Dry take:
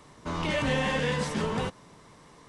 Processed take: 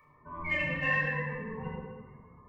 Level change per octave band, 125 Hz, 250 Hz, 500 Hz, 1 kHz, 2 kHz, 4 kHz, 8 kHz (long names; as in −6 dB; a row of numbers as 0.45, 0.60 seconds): −5.5 dB, −8.5 dB, −8.5 dB, −6.0 dB, +2.5 dB, −12.0 dB, below −25 dB